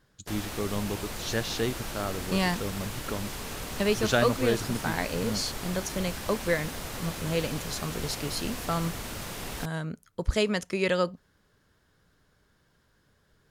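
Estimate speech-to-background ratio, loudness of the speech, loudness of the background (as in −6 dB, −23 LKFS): 6.0 dB, −30.5 LKFS, −36.5 LKFS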